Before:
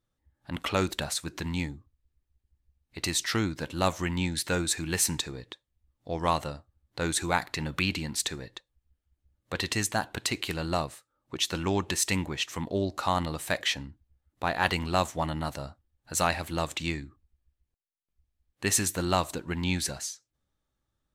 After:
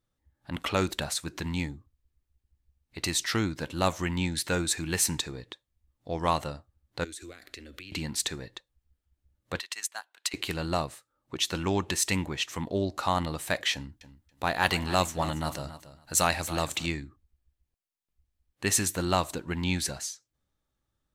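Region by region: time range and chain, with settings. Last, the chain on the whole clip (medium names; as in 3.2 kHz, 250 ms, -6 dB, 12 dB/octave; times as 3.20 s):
7.04–7.92 s: compression 16:1, threshold -37 dBFS + static phaser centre 370 Hz, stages 4
9.59–10.34 s: high-pass 1.1 kHz + upward expansion 2.5:1, over -39 dBFS
13.73–16.86 s: treble shelf 4.5 kHz +6.5 dB + feedback delay 279 ms, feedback 17%, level -14 dB
whole clip: none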